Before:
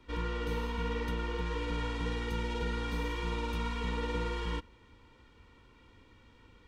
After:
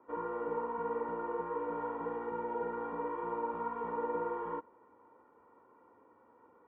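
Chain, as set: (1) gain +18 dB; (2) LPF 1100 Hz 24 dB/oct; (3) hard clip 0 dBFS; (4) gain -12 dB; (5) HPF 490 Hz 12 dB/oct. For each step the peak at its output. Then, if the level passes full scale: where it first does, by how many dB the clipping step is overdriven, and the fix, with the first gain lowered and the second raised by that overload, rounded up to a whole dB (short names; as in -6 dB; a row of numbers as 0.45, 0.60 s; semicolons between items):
-3.5, -5.0, -5.0, -17.0, -23.5 dBFS; no overload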